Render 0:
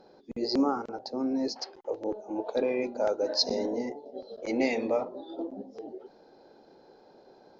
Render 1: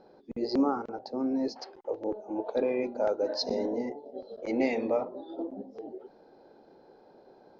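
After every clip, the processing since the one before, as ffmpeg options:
ffmpeg -i in.wav -af "lowpass=frequency=2300:poles=1" out.wav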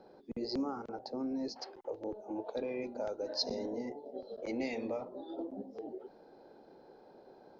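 ffmpeg -i in.wav -filter_complex "[0:a]acrossover=split=150|3000[link_01][link_02][link_03];[link_02]acompressor=threshold=-38dB:ratio=2.5[link_04];[link_01][link_04][link_03]amix=inputs=3:normalize=0,volume=-1dB" out.wav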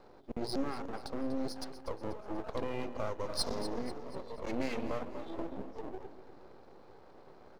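ffmpeg -i in.wav -filter_complex "[0:a]aeval=exprs='max(val(0),0)':channel_layout=same,asplit=2[link_01][link_02];[link_02]aecho=0:1:243|486|729|972:0.237|0.104|0.0459|0.0202[link_03];[link_01][link_03]amix=inputs=2:normalize=0,volume=4.5dB" out.wav

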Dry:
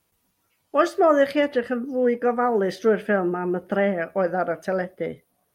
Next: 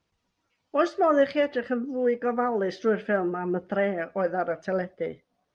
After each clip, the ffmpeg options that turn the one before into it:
ffmpeg -i in.wav -af "lowpass=frequency=6100:width=0.5412,lowpass=frequency=6100:width=1.3066,aphaser=in_gain=1:out_gain=1:delay=4.5:decay=0.27:speed=0.84:type=triangular,volume=-4dB" out.wav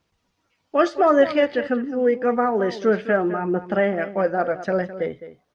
ffmpeg -i in.wav -filter_complex "[0:a]asplit=2[link_01][link_02];[link_02]adelay=209.9,volume=-13dB,highshelf=frequency=4000:gain=-4.72[link_03];[link_01][link_03]amix=inputs=2:normalize=0,volume=5dB" out.wav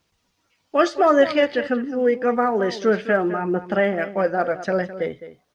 ffmpeg -i in.wav -af "highshelf=frequency=2800:gain=7" out.wav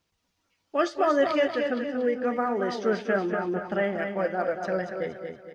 ffmpeg -i in.wav -af "aecho=1:1:234|468|702|936|1170:0.473|0.194|0.0795|0.0326|0.0134,volume=-7dB" out.wav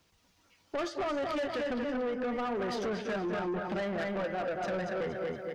ffmpeg -i in.wav -filter_complex "[0:a]acrossover=split=120[link_01][link_02];[link_02]acompressor=threshold=-34dB:ratio=4[link_03];[link_01][link_03]amix=inputs=2:normalize=0,asoftclip=type=tanh:threshold=-37dB,volume=7.5dB" out.wav

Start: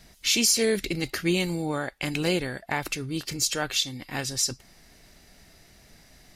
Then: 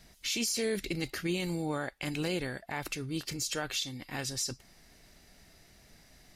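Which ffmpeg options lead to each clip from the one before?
ffmpeg -i in.wav -af "alimiter=limit=-18.5dB:level=0:latency=1:release=36,volume=-4.5dB" out.wav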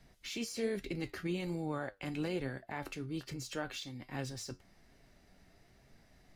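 ffmpeg -i in.wav -filter_complex "[0:a]highshelf=frequency=2900:gain=-11.5,flanger=delay=7.3:depth=3.6:regen=70:speed=1.2:shape=sinusoidal,acrossover=split=250|4300[link_01][link_02][link_03];[link_03]acrusher=bits=4:mode=log:mix=0:aa=0.000001[link_04];[link_01][link_02][link_04]amix=inputs=3:normalize=0,volume=1.5dB" out.wav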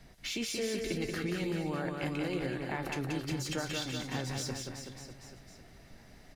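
ffmpeg -i in.wav -filter_complex "[0:a]acompressor=threshold=-40dB:ratio=3,asplit=2[link_01][link_02];[link_02]aecho=0:1:180|378|595.8|835.4|1099:0.631|0.398|0.251|0.158|0.1[link_03];[link_01][link_03]amix=inputs=2:normalize=0,volume=6.5dB" out.wav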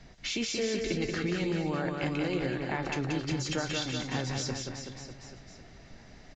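ffmpeg -i in.wav -af "aresample=16000,aresample=44100,volume=3.5dB" out.wav

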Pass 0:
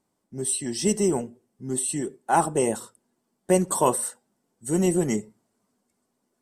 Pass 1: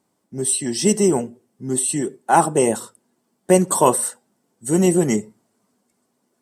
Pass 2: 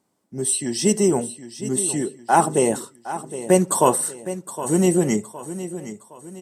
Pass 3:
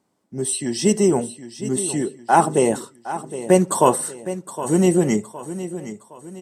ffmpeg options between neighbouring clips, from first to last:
ffmpeg -i in.wav -af "highpass=89,volume=6dB" out.wav
ffmpeg -i in.wav -af "aecho=1:1:764|1528|2292|3056:0.224|0.094|0.0395|0.0166,volume=-1.5dB" out.wav
ffmpeg -i in.wav -af "highshelf=frequency=8300:gain=-8,volume=1.5dB" out.wav

